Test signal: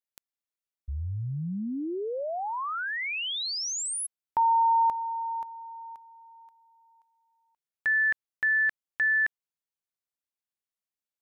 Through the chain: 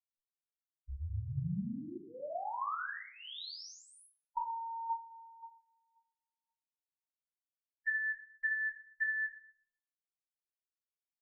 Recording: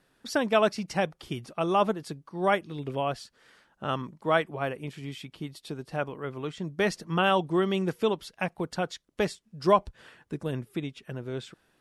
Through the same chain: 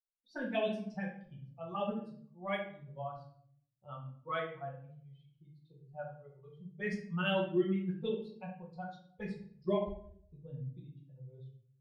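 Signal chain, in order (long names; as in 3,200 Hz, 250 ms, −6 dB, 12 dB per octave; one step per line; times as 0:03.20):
spectral dynamics exaggerated over time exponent 2
low-pass that shuts in the quiet parts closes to 1,200 Hz, open at −23 dBFS
parametric band 7,500 Hz −8.5 dB 0.45 octaves
phaser swept by the level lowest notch 240 Hz, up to 1,300 Hz, full sweep at −22 dBFS
rectangular room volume 89 cubic metres, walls mixed, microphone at 1 metre
level −7.5 dB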